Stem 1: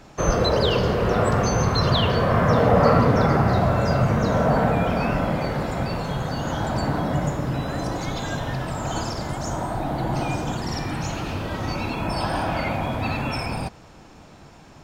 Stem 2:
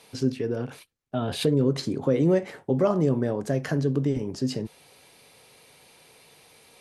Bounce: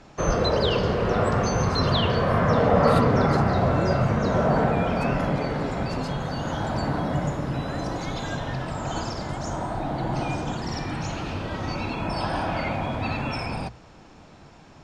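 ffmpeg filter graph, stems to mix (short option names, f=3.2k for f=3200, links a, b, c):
-filter_complex "[0:a]lowpass=6.9k,volume=-2dB[a];[1:a]adelay=1550,volume=-8dB[b];[a][b]amix=inputs=2:normalize=0,bandreject=f=60:t=h:w=6,bandreject=f=120:t=h:w=6"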